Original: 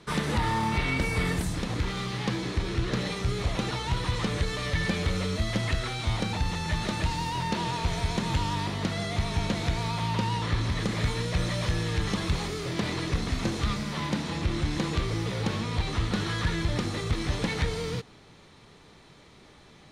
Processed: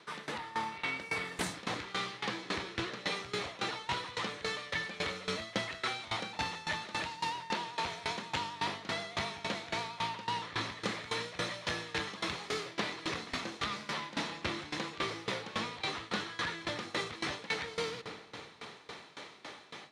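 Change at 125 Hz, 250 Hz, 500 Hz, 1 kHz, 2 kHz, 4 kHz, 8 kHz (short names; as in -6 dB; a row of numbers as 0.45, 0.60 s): -19.5, -12.5, -6.5, -4.5, -3.0, -3.5, -6.5 dB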